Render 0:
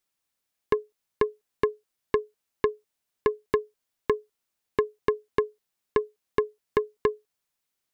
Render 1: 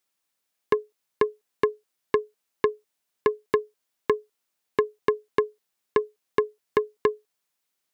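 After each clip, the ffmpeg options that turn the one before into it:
ffmpeg -i in.wav -af "highpass=frequency=190:poles=1,volume=2.5dB" out.wav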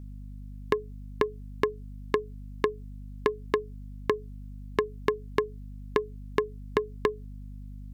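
ffmpeg -i in.wav -af "aeval=exprs='val(0)+0.00794*(sin(2*PI*50*n/s)+sin(2*PI*2*50*n/s)/2+sin(2*PI*3*50*n/s)/3+sin(2*PI*4*50*n/s)/4+sin(2*PI*5*50*n/s)/5)':channel_layout=same,acompressor=threshold=-24dB:ratio=4,volume=2dB" out.wav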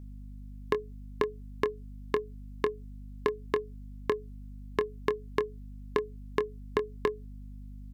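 ffmpeg -i in.wav -filter_complex "[0:a]asplit=2[link_01][link_02];[link_02]adelay=24,volume=-11.5dB[link_03];[link_01][link_03]amix=inputs=2:normalize=0,volume=-3dB" out.wav

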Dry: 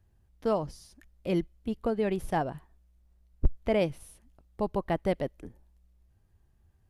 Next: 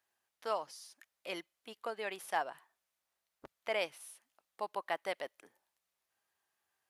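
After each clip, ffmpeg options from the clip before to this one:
ffmpeg -i in.wav -af "highpass=990,volume=1dB" out.wav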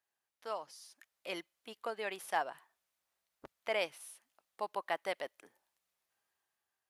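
ffmpeg -i in.wav -af "dynaudnorm=framelen=330:gausssize=5:maxgain=6.5dB,volume=-6dB" out.wav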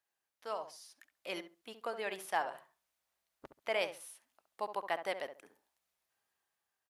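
ffmpeg -i in.wav -filter_complex "[0:a]asplit=2[link_01][link_02];[link_02]adelay=68,lowpass=frequency=1400:poles=1,volume=-8.5dB,asplit=2[link_03][link_04];[link_04]adelay=68,lowpass=frequency=1400:poles=1,volume=0.23,asplit=2[link_05][link_06];[link_06]adelay=68,lowpass=frequency=1400:poles=1,volume=0.23[link_07];[link_01][link_03][link_05][link_07]amix=inputs=4:normalize=0" out.wav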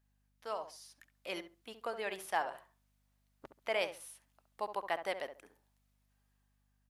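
ffmpeg -i in.wav -af "aeval=exprs='val(0)+0.000178*(sin(2*PI*50*n/s)+sin(2*PI*2*50*n/s)/2+sin(2*PI*3*50*n/s)/3+sin(2*PI*4*50*n/s)/4+sin(2*PI*5*50*n/s)/5)':channel_layout=same" out.wav

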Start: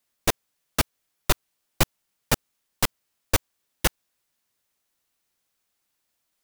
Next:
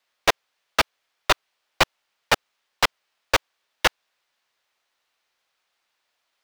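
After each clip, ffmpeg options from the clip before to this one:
ffmpeg -i in.wav -filter_complex "[0:a]acrossover=split=470 5000:gain=0.158 1 0.141[link_01][link_02][link_03];[link_01][link_02][link_03]amix=inputs=3:normalize=0,volume=8dB" out.wav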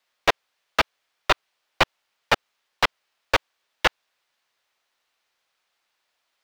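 ffmpeg -i in.wav -filter_complex "[0:a]acrossover=split=4500[link_01][link_02];[link_02]acompressor=threshold=-34dB:ratio=4:attack=1:release=60[link_03];[link_01][link_03]amix=inputs=2:normalize=0" out.wav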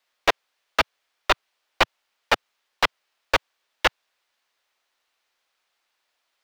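ffmpeg -i in.wav -af "equalizer=frequency=130:width=2.9:gain=-14.5" out.wav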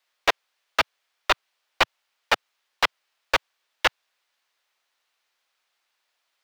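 ffmpeg -i in.wav -af "lowshelf=frequency=490:gain=-6" out.wav

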